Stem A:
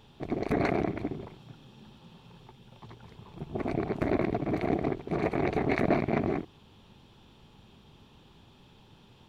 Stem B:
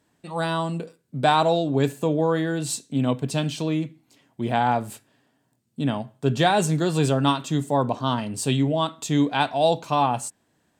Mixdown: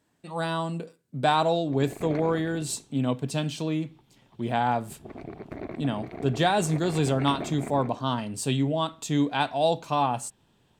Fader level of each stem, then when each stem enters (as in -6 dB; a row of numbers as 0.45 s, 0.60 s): -9.5 dB, -3.5 dB; 1.50 s, 0.00 s